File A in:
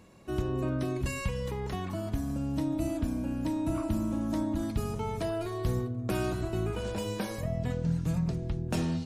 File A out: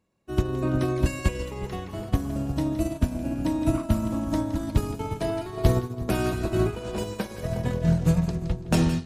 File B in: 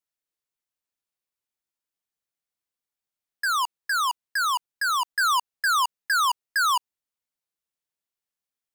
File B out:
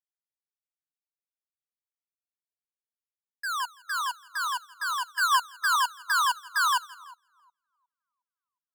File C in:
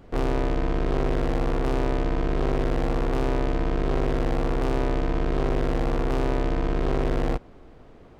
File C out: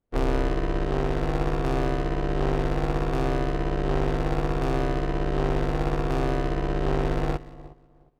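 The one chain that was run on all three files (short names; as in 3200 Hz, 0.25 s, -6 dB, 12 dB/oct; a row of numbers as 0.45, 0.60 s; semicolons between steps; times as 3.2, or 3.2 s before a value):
on a send: split-band echo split 1200 Hz, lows 0.361 s, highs 0.167 s, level -7 dB; on the sum: upward expander 2.5:1, over -45 dBFS; match loudness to -27 LUFS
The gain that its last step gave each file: +12.0, 0.0, +2.0 dB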